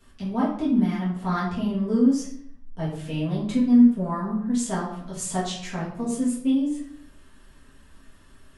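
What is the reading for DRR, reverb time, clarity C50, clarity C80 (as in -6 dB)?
-8.5 dB, 0.60 s, 4.0 dB, 8.0 dB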